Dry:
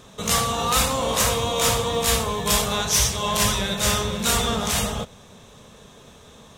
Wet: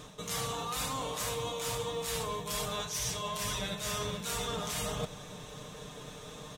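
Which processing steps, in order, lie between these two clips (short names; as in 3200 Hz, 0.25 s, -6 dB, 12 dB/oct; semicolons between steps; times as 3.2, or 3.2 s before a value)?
comb 6.6 ms, depth 64%; reverse; compressor 16:1, threshold -32 dBFS, peak gain reduction 19 dB; reverse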